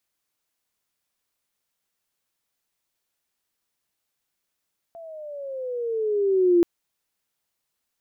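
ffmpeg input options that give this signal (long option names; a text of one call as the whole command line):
ffmpeg -f lavfi -i "aevalsrc='pow(10,(-13+25*(t/1.68-1))/20)*sin(2*PI*679*1.68/(-12*log(2)/12)*(exp(-12*log(2)/12*t/1.68)-1))':duration=1.68:sample_rate=44100" out.wav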